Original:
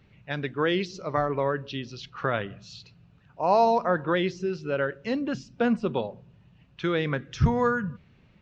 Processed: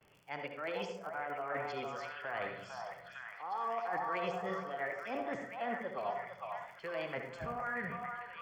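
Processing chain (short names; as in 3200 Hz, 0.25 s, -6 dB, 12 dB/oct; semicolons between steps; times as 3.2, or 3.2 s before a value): gate with hold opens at -55 dBFS; three-band isolator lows -16 dB, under 380 Hz, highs -18 dB, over 2100 Hz; reverse; compressor, threshold -40 dBFS, peak gain reduction 21 dB; reverse; crackle 49/s -52 dBFS; formant shift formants +4 st; Butterworth band-stop 3800 Hz, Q 6.2; delay with a stepping band-pass 0.455 s, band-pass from 950 Hz, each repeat 0.7 oct, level -1 dB; on a send at -5 dB: reverb RT60 0.50 s, pre-delay 62 ms; on the sum: gain +2 dB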